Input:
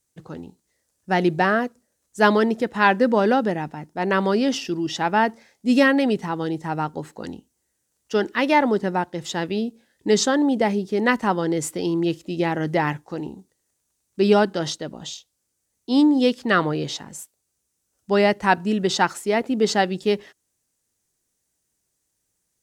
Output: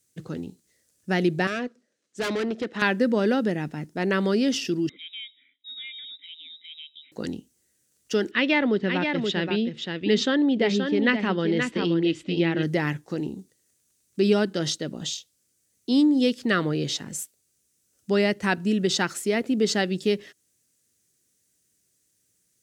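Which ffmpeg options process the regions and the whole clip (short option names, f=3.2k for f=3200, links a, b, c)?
-filter_complex "[0:a]asettb=1/sr,asplit=3[a][b][c];[a]atrim=end=1.474[d];[b]atrim=start=1.47:end=2.82,asetpts=PTS-STARTPTS,afade=t=in:d=0.004:c=qsin,afade=t=out:st=1.346:d=0.004:c=qsin,highpass=250,lowpass=4.3k,aeval=exprs='(tanh(12.6*val(0)+0.45)-tanh(0.45))/12.6':c=same[e];[c]atrim=start=2.816[f];[d][e]acrossfade=d=0.004:c1=hsin:c2=qsin[g];[g][f]acrossfade=d=0.004:c1=qsin:c2=hsin,asettb=1/sr,asplit=3[h][i][j];[h]atrim=end=4.894[k];[i]atrim=start=4.89:end=7.12,asetpts=PTS-STARTPTS,afade=t=in:d=0.004:c=qsin,afade=t=out:st=2.226:d=0.004:c=qsin,lowpass=f=3.4k:t=q:w=0.5098,lowpass=f=3.4k:t=q:w=0.6013,lowpass=f=3.4k:t=q:w=0.9,lowpass=f=3.4k:t=q:w=2.563,afreqshift=-4000,asplit=3[l][m][n];[l]bandpass=f=270:t=q:w=8,volume=0dB[o];[m]bandpass=f=2.29k:t=q:w=8,volume=-6dB[p];[n]bandpass=f=3.01k:t=q:w=8,volume=-9dB[q];[o][p][q]amix=inputs=3:normalize=0,acompressor=threshold=-51dB:ratio=2:attack=3.2:release=140:knee=1:detection=peak[r];[j]atrim=start=7.116[s];[k][r]acrossfade=d=0.004:c1=hsin:c2=qsin[t];[t][s]acrossfade=d=0.004:c1=qsin:c2=hsin,asettb=1/sr,asplit=3[u][v][w];[u]atrim=end=8.314[x];[v]atrim=start=8.31:end=12.63,asetpts=PTS-STARTPTS,afade=t=in:d=0.004:c=qsin,afade=t=out:st=4.316:d=0.004:c=qsin,lowpass=f=3.2k:t=q:w=1.7,aecho=1:1:526:0.447,atrim=end_sample=190512[y];[w]atrim=start=12.626[z];[x][y]acrossfade=d=0.004:c1=hsin:c2=qsin[aa];[aa][z]acrossfade=d=0.004:c1=qsin:c2=hsin,highpass=85,equalizer=f=880:t=o:w=0.99:g=-12,acompressor=threshold=-34dB:ratio=1.5,volume=5dB"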